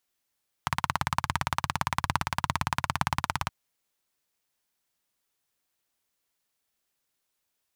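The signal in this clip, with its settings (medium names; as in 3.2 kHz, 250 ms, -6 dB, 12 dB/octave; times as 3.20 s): single-cylinder engine model, steady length 2.82 s, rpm 2100, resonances 91/130/980 Hz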